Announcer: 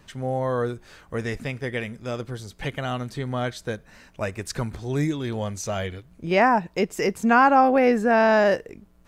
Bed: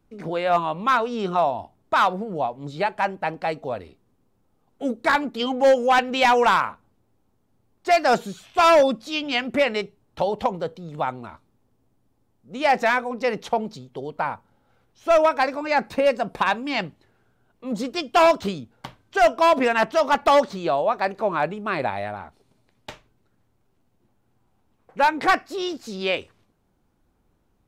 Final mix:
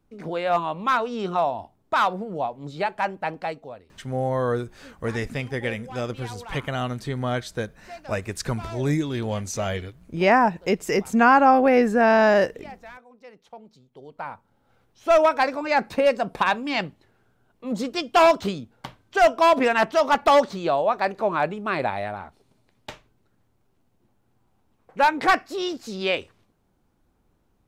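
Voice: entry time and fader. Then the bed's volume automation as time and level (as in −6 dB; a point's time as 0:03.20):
3.90 s, +1.0 dB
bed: 0:03.41 −2 dB
0:04.15 −23 dB
0:13.39 −23 dB
0:14.72 0 dB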